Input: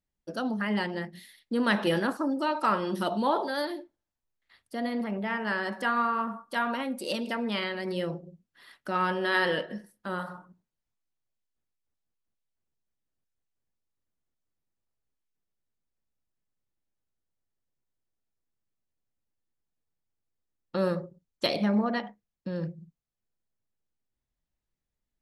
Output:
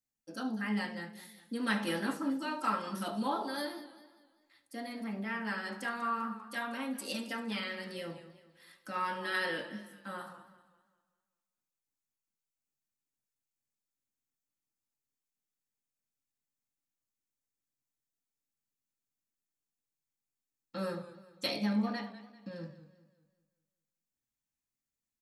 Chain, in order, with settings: treble shelf 5.6 kHz +9 dB; delay 72 ms -15.5 dB; reverberation RT60 0.25 s, pre-delay 3 ms, DRR 1 dB; modulated delay 197 ms, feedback 42%, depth 97 cents, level -15 dB; trim -8 dB

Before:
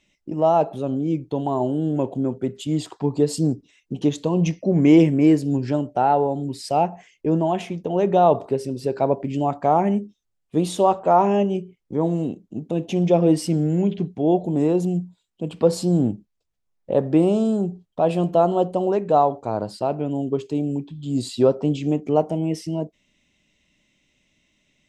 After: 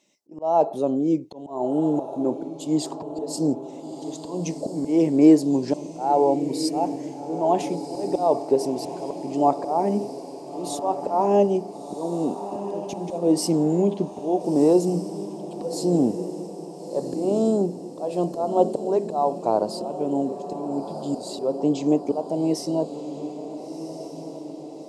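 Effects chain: high-pass 300 Hz 12 dB/octave; high-order bell 2.1 kHz -10.5 dB; slow attack 331 ms; on a send: echo that smears into a reverb 1387 ms, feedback 58%, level -11 dB; on the sum: trim +5 dB

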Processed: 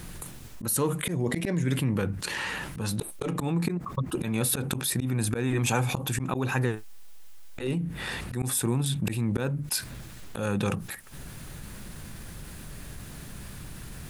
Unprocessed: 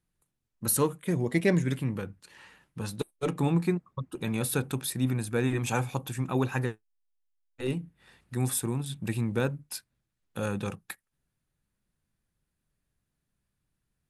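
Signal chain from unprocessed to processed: slow attack 281 ms; level flattener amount 70%

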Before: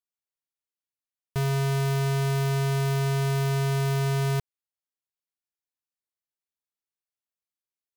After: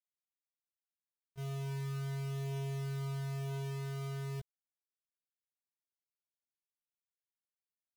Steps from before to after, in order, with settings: chorus voices 4, 0.34 Hz, delay 16 ms, depth 1.1 ms; expander -14 dBFS; trim +2.5 dB

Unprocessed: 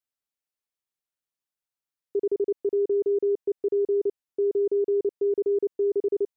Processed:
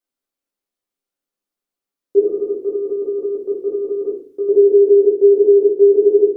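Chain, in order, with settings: ten-band graphic EQ 125 Hz -9 dB, 250 Hz +10 dB, 500 Hz +4 dB; 2.24–4.49 s: compressor with a negative ratio -24 dBFS, ratio -0.5; simulated room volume 53 m³, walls mixed, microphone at 0.84 m

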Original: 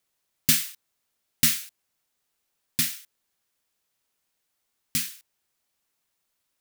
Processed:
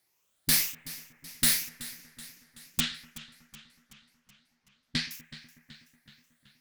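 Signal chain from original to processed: drifting ripple filter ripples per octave 0.78, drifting +2 Hz, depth 8 dB; 2.80–5.11 s: low-pass 4.6 kHz 24 dB/octave; peak limiter -13.5 dBFS, peak gain reduction 9 dB; valve stage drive 18 dB, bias 0.6; bucket-brigade echo 123 ms, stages 2048, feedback 81%, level -21 dB; modulated delay 376 ms, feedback 56%, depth 72 cents, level -16.5 dB; trim +5.5 dB

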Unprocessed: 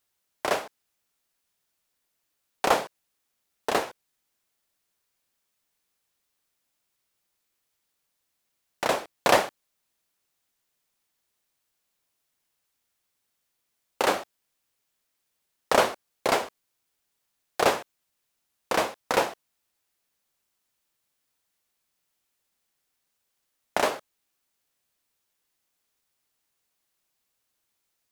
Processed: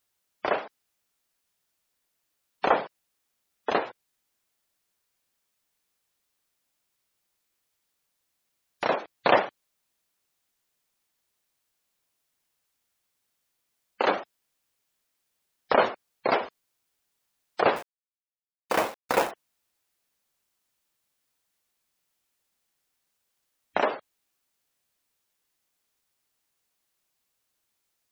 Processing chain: spectral gate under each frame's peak -20 dB strong; 17.76–19.31 s: companded quantiser 4-bit

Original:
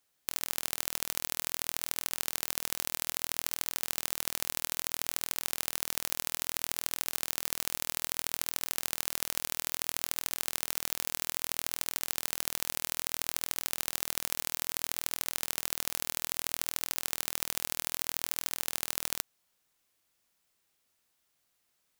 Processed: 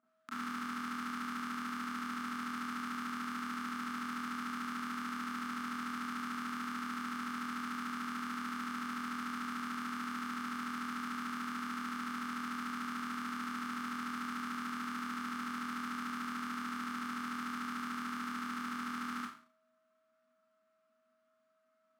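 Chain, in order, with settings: whistle 640 Hz -57 dBFS; two resonant band-passes 560 Hz, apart 2.4 oct; Schroeder reverb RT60 0.43 s, combs from 29 ms, DRR -9.5 dB; trim +3.5 dB

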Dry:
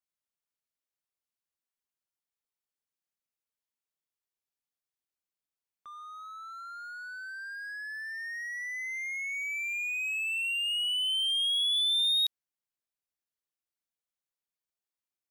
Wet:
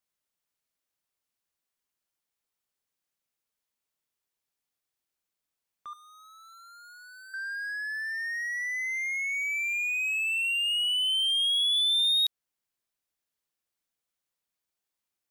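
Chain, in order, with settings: 5.93–7.34 s: differentiator; in parallel at -0.5 dB: compression, threshold -36 dBFS, peak gain reduction 11 dB

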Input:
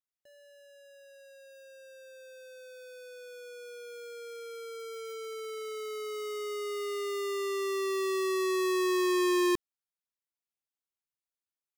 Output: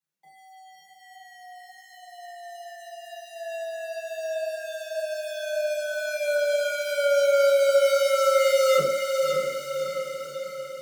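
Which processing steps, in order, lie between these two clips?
on a send: echo that smears into a reverb 635 ms, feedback 58%, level -4.5 dB; on the sum: simulated room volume 230 m³, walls furnished, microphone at 6.1 m; speed mistake 44.1 kHz file played as 48 kHz; frequency shift +140 Hz; trim -4.5 dB

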